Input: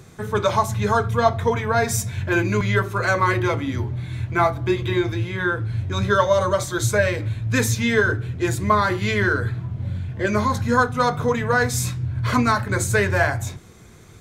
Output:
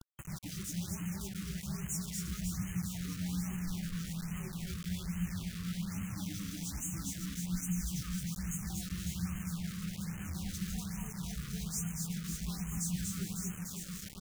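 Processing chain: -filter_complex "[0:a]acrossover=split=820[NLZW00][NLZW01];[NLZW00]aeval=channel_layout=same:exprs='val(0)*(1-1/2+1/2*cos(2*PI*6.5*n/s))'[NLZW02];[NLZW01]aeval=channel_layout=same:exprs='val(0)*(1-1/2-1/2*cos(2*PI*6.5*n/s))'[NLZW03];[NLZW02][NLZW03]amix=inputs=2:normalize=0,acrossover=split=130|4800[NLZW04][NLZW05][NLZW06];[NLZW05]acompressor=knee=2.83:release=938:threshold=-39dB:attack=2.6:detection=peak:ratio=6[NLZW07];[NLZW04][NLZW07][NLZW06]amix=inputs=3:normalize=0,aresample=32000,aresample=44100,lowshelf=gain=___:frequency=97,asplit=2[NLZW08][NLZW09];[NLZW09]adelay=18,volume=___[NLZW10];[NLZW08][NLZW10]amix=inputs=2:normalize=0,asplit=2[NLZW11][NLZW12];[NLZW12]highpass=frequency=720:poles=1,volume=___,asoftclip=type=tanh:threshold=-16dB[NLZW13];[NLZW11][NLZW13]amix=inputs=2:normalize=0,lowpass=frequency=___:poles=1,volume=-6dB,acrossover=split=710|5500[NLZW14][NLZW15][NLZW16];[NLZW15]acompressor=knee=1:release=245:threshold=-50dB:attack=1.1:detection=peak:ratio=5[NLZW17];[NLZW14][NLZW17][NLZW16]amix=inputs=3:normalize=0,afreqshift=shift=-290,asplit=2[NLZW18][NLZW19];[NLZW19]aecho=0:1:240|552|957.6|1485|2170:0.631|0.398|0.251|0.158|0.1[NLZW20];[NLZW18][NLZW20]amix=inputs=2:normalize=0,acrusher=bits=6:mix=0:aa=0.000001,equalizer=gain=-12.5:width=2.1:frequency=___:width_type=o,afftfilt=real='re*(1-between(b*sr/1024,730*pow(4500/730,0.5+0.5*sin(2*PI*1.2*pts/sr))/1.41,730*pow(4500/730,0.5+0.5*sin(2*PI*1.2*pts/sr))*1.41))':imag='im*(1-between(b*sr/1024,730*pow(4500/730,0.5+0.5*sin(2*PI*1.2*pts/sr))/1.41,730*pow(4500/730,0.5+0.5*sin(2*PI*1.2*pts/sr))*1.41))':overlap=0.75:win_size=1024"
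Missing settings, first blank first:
-5, -12dB, 13dB, 1800, 570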